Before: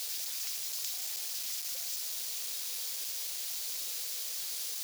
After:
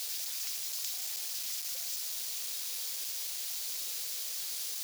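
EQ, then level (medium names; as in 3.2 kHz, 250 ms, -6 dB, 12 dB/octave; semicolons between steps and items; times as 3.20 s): high-pass 290 Hz 6 dB/octave; 0.0 dB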